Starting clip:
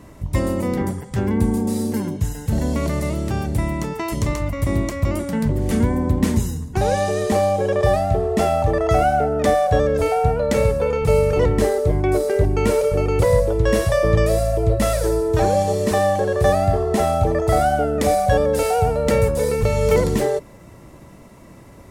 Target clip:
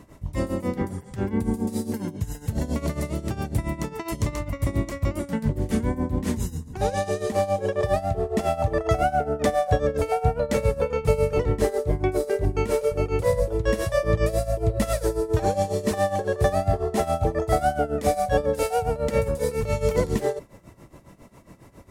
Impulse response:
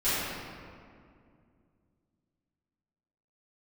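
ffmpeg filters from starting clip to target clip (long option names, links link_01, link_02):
-af "tremolo=f=7.3:d=0.81,volume=-2dB"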